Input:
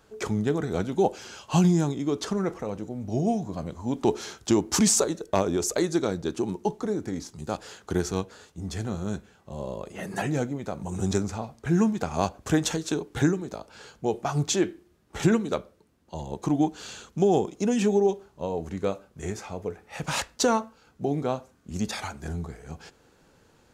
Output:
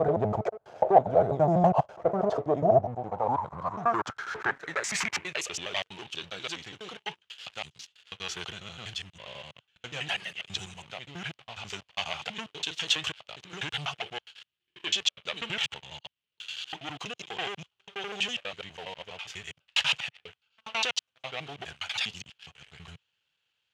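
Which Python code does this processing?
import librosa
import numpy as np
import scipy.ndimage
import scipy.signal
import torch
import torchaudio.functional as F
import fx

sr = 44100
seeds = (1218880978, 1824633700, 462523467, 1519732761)

y = fx.block_reorder(x, sr, ms=82.0, group=8)
y = fx.dynamic_eq(y, sr, hz=710.0, q=1.0, threshold_db=-37.0, ratio=4.0, max_db=6)
y = fx.leveller(y, sr, passes=3)
y = fx.filter_sweep_bandpass(y, sr, from_hz=650.0, to_hz=3000.0, start_s=2.71, end_s=5.64, q=4.9)
y = fx.low_shelf_res(y, sr, hz=180.0, db=12.0, q=1.5)
y = y * 10.0 ** (3.5 / 20.0)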